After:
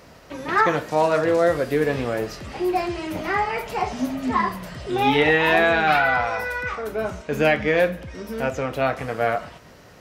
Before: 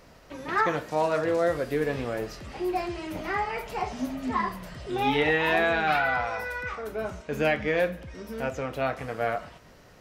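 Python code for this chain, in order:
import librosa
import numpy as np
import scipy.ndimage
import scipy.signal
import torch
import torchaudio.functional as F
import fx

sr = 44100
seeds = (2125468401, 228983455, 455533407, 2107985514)

y = scipy.signal.sosfilt(scipy.signal.butter(2, 53.0, 'highpass', fs=sr, output='sos'), x)
y = y * librosa.db_to_amplitude(6.0)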